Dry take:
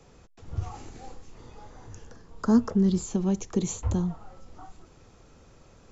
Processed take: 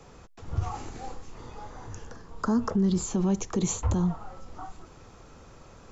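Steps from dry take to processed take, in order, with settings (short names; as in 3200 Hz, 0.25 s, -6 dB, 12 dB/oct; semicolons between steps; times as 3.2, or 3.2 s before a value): bell 1100 Hz +4.5 dB 1.2 oct; limiter -21 dBFS, peak gain reduction 10 dB; gain +3.5 dB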